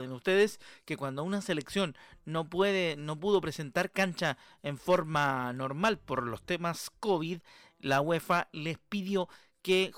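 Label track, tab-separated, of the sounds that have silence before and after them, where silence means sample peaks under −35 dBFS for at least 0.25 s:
0.880000	1.900000	sound
2.280000	4.320000	sound
4.650000	7.350000	sound
7.850000	9.240000	sound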